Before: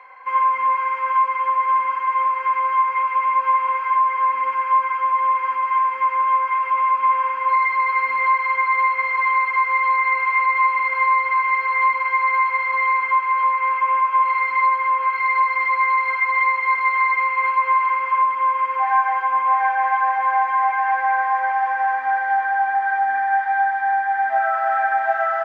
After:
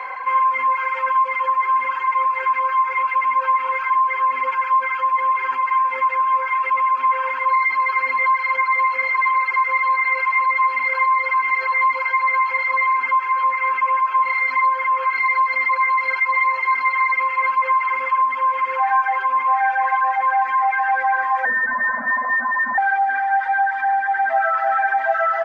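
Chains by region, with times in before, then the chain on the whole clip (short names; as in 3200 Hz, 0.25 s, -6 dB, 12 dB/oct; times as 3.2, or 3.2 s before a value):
21.45–22.78 HPF 840 Hz 6 dB/oct + inverted band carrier 2600 Hz
whole clip: reverb removal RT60 1.5 s; fast leveller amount 50%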